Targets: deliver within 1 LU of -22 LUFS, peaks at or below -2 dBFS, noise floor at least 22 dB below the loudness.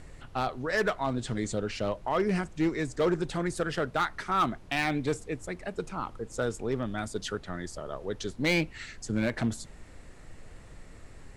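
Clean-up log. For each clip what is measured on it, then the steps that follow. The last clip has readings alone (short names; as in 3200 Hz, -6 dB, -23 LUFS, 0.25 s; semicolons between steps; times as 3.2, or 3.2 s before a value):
clipped 0.7%; flat tops at -20.0 dBFS; noise floor -50 dBFS; noise floor target -53 dBFS; loudness -31.0 LUFS; peak -20.0 dBFS; loudness target -22.0 LUFS
-> clip repair -20 dBFS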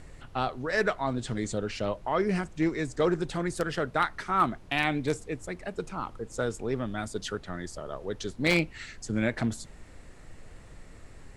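clipped 0.0%; noise floor -50 dBFS; noise floor target -53 dBFS
-> noise print and reduce 6 dB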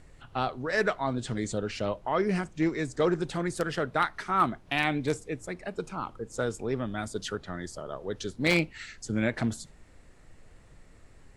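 noise floor -55 dBFS; loudness -30.5 LUFS; peak -11.0 dBFS; loudness target -22.0 LUFS
-> gain +8.5 dB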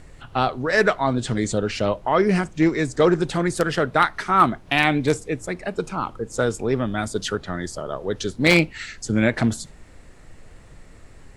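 loudness -22.0 LUFS; peak -2.5 dBFS; noise floor -46 dBFS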